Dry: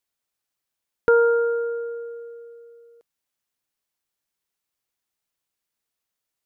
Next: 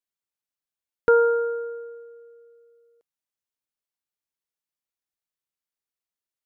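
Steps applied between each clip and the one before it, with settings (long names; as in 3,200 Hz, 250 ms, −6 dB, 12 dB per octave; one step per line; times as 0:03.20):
expander for the loud parts 1.5 to 1, over −34 dBFS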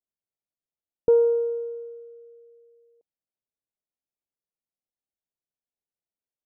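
Butterworth low-pass 800 Hz 36 dB per octave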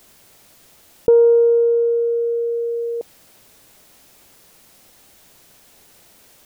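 envelope flattener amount 70%
level +5 dB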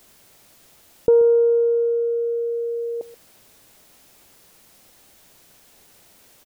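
single-tap delay 131 ms −16.5 dB
level −2.5 dB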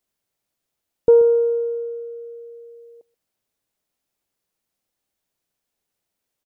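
expander for the loud parts 2.5 to 1, over −33 dBFS
level +3.5 dB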